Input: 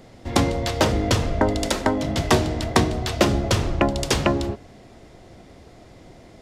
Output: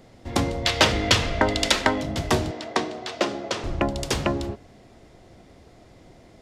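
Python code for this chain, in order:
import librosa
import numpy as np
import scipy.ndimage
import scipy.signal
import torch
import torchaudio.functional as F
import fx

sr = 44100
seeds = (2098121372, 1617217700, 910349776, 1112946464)

y = fx.peak_eq(x, sr, hz=2900.0, db=12.5, octaves=2.7, at=(0.65, 2.01))
y = fx.bandpass_edges(y, sr, low_hz=320.0, high_hz=6300.0, at=(2.51, 3.64))
y = y * 10.0 ** (-4.0 / 20.0)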